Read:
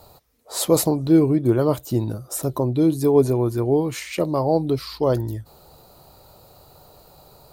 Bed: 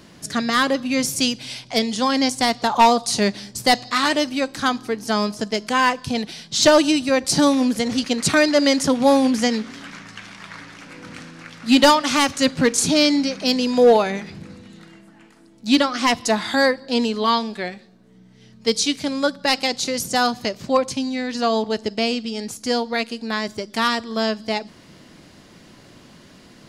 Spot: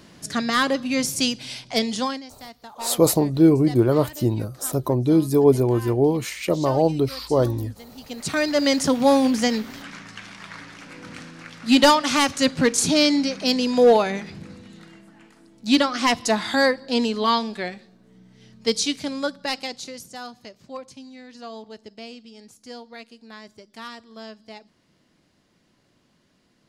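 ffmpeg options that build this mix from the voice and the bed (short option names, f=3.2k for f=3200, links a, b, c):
-filter_complex "[0:a]adelay=2300,volume=0.5dB[a];[1:a]volume=18.5dB,afade=t=out:st=1.97:d=0.25:silence=0.1,afade=t=in:st=7.97:d=0.83:silence=0.0944061,afade=t=out:st=18.55:d=1.58:silence=0.158489[b];[a][b]amix=inputs=2:normalize=0"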